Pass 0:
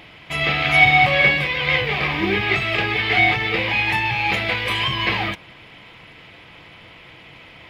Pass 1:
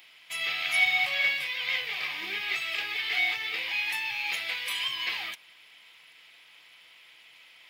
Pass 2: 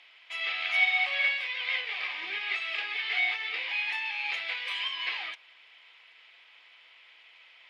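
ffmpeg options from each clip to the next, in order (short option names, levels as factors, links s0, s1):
-af "aderivative"
-af "highpass=450,lowpass=3500"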